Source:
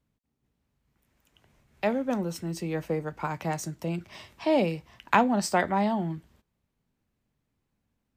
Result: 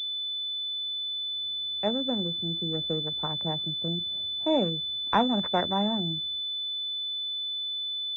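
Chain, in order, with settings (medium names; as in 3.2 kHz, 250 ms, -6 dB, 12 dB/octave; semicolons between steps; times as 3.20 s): local Wiener filter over 41 samples; class-D stage that switches slowly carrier 3.5 kHz; trim -1 dB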